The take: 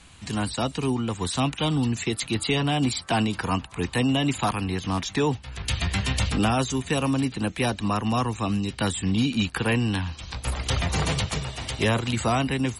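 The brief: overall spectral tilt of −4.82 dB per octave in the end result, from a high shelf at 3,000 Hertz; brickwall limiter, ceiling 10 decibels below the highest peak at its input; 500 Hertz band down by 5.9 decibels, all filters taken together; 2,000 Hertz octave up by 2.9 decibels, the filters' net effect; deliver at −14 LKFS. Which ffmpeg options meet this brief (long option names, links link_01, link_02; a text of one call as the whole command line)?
ffmpeg -i in.wav -af "equalizer=frequency=500:width_type=o:gain=-8,equalizer=frequency=2000:width_type=o:gain=6,highshelf=frequency=3000:gain=-4.5,volume=15.5dB,alimiter=limit=-4dB:level=0:latency=1" out.wav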